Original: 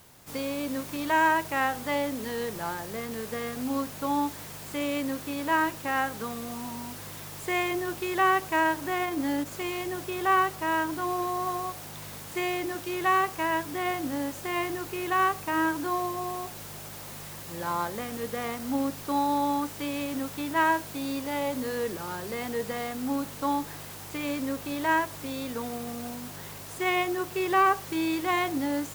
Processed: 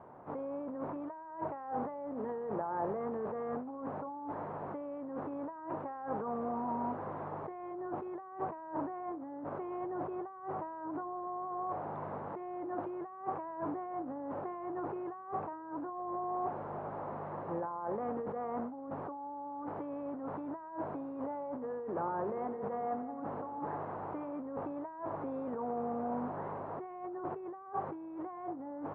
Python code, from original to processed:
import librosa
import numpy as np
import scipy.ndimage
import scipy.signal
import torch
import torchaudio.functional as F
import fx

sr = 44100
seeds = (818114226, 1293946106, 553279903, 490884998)

y = fx.over_compress(x, sr, threshold_db=-38.0, ratio=-1.0)
y = fx.highpass(y, sr, hz=730.0, slope=6)
y = fx.echo_heads(y, sr, ms=89, heads='first and second', feedback_pct=56, wet_db=-15, at=(22.19, 24.4))
y = fx.quant_companded(y, sr, bits=6)
y = scipy.signal.sosfilt(scipy.signal.butter(4, 1000.0, 'lowpass', fs=sr, output='sos'), y)
y = y * 10.0 ** (5.5 / 20.0)